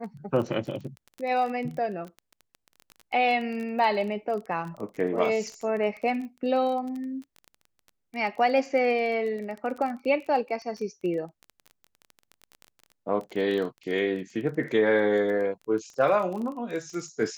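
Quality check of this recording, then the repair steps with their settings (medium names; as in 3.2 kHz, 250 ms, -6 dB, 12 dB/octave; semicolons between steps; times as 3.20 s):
crackle 23 per s -33 dBFS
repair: de-click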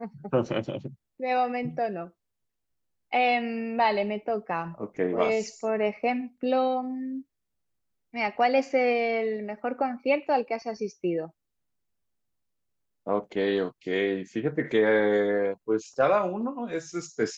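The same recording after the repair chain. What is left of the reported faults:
nothing left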